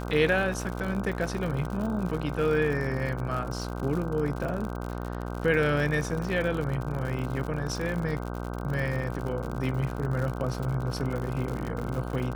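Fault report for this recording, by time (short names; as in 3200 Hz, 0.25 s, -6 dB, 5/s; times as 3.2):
buzz 60 Hz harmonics 26 -34 dBFS
crackle 87/s -32 dBFS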